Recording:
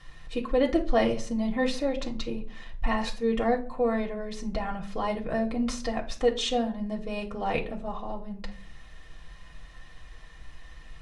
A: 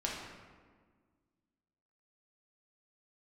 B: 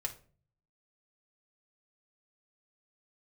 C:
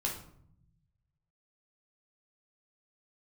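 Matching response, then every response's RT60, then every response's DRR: B; 1.6 s, 0.45 s, 0.65 s; -4.0 dB, 0.0 dB, -1.5 dB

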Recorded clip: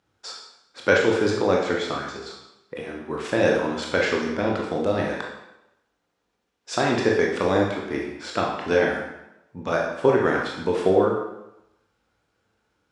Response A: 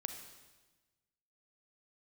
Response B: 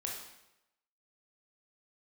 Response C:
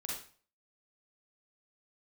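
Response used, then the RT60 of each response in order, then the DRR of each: B; 1.2 s, 0.90 s, 0.45 s; 6.0 dB, -1.5 dB, -4.5 dB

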